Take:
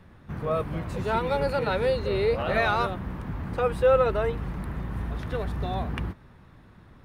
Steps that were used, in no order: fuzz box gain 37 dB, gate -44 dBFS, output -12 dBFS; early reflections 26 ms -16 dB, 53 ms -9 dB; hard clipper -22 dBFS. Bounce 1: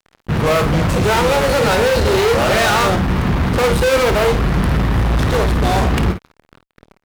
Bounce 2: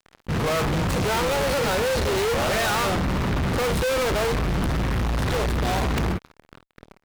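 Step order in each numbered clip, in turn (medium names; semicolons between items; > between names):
hard clipper > fuzz box > early reflections; fuzz box > early reflections > hard clipper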